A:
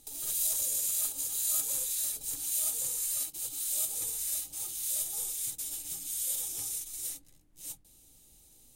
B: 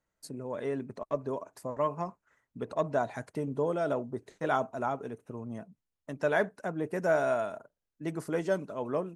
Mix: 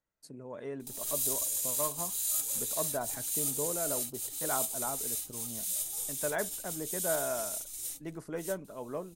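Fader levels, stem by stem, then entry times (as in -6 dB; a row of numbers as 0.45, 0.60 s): -1.5, -6.5 dB; 0.80, 0.00 s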